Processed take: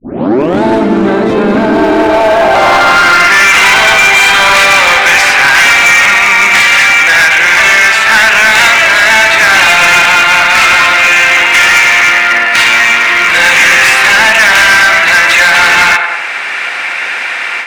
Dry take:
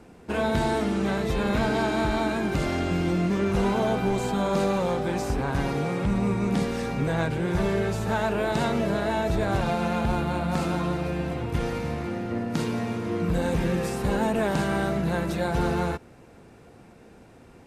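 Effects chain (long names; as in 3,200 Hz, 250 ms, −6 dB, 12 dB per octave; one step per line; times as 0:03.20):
turntable start at the beginning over 0.63 s
tilt shelving filter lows −8 dB, about 670 Hz
automatic gain control gain up to 14 dB
low-shelf EQ 240 Hz −10.5 dB
in parallel at −1.5 dB: downward compressor 6 to 1, threshold −25 dBFS, peak gain reduction 13 dB
on the sum: band-pass filter sweep 270 Hz → 2,100 Hz, 0:01.70–0:03.46
on a send: tape delay 101 ms, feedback 51%, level −8 dB, low-pass 2,100 Hz
on the sum: hard clipping −23 dBFS, distortion −9 dB
notch filter 460 Hz, Q 12
boost into a limiter +26.5 dB
level −1 dB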